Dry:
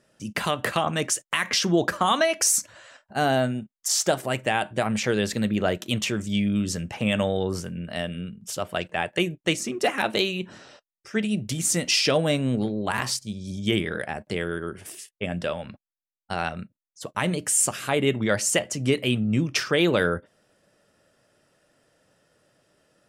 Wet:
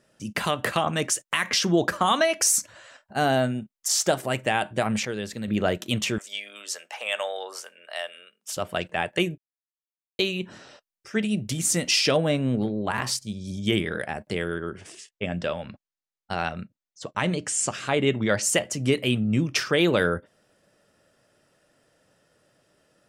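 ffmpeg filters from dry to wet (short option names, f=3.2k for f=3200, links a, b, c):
-filter_complex "[0:a]asettb=1/sr,asplit=3[a][b][c];[a]atrim=end=6.184[d];[b]atrim=start=6.18:end=8.57,asetpts=PTS-STARTPTS,afade=t=in:d=0.004:c=qsin,afade=t=out:st=2.386:d=0.004:c=qsin,highpass=f=610:w=0.5412,highpass=f=610:w=1.3066[e];[c]atrim=start=8.566[f];[d][e]acrossfade=d=0.004:c1=hsin:c2=qsin[g];[g][f]acrossfade=d=0.004:c1=qsin:c2=hsin,asettb=1/sr,asplit=3[h][i][j];[h]atrim=end=12.164[k];[i]atrim=start=12.16:end=13.07,asetpts=PTS-STARTPTS,afade=t=in:d=0.004:c=qsin,afade=t=out:st=0.906:d=0.004:c=qsin,highshelf=f=4.2k:g=-9.5[l];[j]atrim=start=13.066[m];[k][l]acrossfade=d=0.004:c1=hsin:c2=qsin[n];[n][m]acrossfade=d=0.004:c1=qsin:c2=hsin,asettb=1/sr,asplit=3[o][p][q];[o]atrim=end=14.544[r];[p]atrim=start=14.54:end=18.43,asetpts=PTS-STARTPTS,afade=t=in:d=0.004:c=qsin,afade=t=out:st=3.886:d=0.004:c=qsin,lowpass=f=7.6k:w=0.5412,lowpass=f=7.6k:w=1.3066[s];[q]atrim=start=18.426[t];[r][s]acrossfade=d=0.004:c1=hsin:c2=qsin[u];[u][t]acrossfade=d=0.004:c1=qsin:c2=hsin,asplit=5[v][w][x][y][z];[v]atrim=end=5.052[aa];[w]atrim=start=5.048:end=5.482,asetpts=PTS-STARTPTS,volume=-7.5dB[ab];[x]atrim=start=5.478:end=9.38,asetpts=PTS-STARTPTS,afade=t=out:st=3.898:d=0.004:c=hsin[ac];[y]atrim=start=9.38:end=10.19,asetpts=PTS-STARTPTS,volume=0[ad];[z]atrim=start=10.19,asetpts=PTS-STARTPTS,afade=t=in:d=0.004:c=hsin[ae];[aa][ab]acrossfade=d=0.004:c1=hsin:c2=hsin[af];[ac][ad][ae]concat=n=3:v=0:a=1[ag];[af][ag]acrossfade=d=0.004:c1=hsin:c2=hsin"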